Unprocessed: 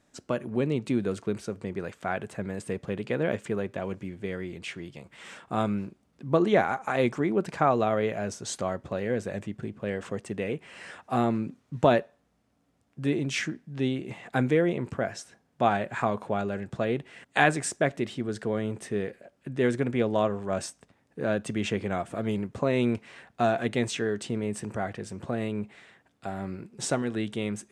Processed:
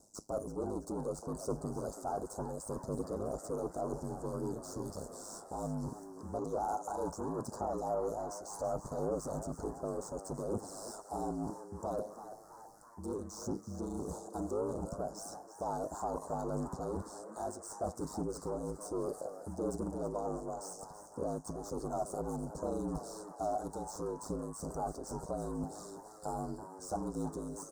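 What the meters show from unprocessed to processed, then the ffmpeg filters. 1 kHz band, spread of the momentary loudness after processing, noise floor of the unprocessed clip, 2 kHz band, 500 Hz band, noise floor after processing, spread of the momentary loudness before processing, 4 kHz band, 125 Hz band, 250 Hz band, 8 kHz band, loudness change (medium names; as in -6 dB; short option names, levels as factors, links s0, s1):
-8.5 dB, 7 LU, -70 dBFS, -28.0 dB, -9.5 dB, -54 dBFS, 12 LU, -17.0 dB, -10.5 dB, -11.0 dB, -5.5 dB, -10.5 dB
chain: -filter_complex "[0:a]aexciter=amount=12.3:drive=3.5:freq=3400,equalizer=f=1200:t=o:w=0.32:g=-15,areverse,acompressor=threshold=0.0178:ratio=10,areverse,asoftclip=type=tanh:threshold=0.0119,aeval=exprs='val(0)*sin(2*PI*52*n/s)':c=same,asplit=2[s0][s1];[s1]highpass=f=720:p=1,volume=2,asoftclip=type=tanh:threshold=0.0119[s2];[s0][s2]amix=inputs=2:normalize=0,lowpass=f=4000:p=1,volume=0.501,highshelf=f=3700:t=q:w=3:g=-7.5,aphaser=in_gain=1:out_gain=1:delay=3.1:decay=0.31:speed=0.66:type=triangular,asuperstop=centerf=2500:order=12:qfactor=0.71,asplit=2[s3][s4];[s4]asplit=6[s5][s6][s7][s8][s9][s10];[s5]adelay=329,afreqshift=130,volume=0.251[s11];[s6]adelay=658,afreqshift=260,volume=0.135[s12];[s7]adelay=987,afreqshift=390,volume=0.0733[s13];[s8]adelay=1316,afreqshift=520,volume=0.0394[s14];[s9]adelay=1645,afreqshift=650,volume=0.0214[s15];[s10]adelay=1974,afreqshift=780,volume=0.0115[s16];[s11][s12][s13][s14][s15][s16]amix=inputs=6:normalize=0[s17];[s3][s17]amix=inputs=2:normalize=0,volume=3.76"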